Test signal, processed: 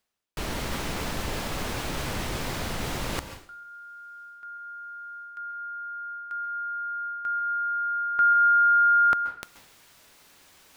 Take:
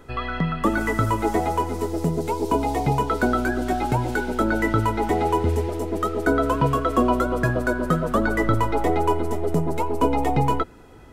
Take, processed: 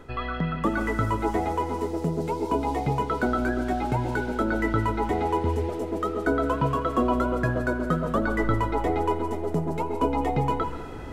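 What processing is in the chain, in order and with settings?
high-shelf EQ 6,700 Hz −9 dB
reversed playback
upward compression, threshold −21 dBFS
reversed playback
dense smooth reverb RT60 0.52 s, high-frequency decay 0.95×, pre-delay 120 ms, DRR 9.5 dB
level −4 dB

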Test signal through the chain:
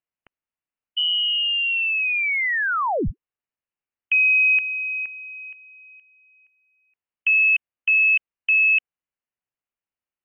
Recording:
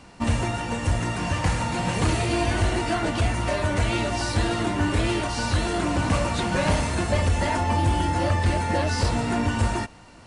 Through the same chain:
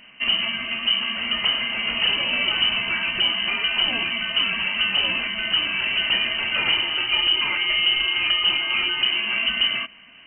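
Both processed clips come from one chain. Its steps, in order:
voice inversion scrambler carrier 3,000 Hz

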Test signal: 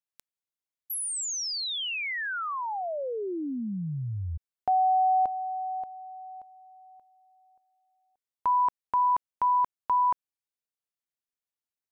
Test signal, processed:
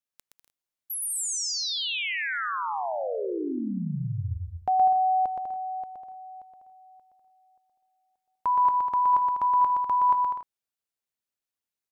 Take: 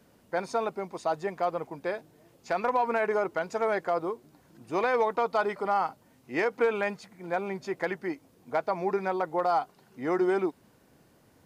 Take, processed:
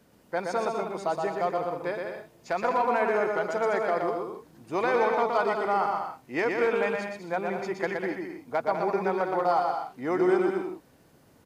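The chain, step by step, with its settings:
bouncing-ball delay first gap 120 ms, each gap 0.65×, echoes 5

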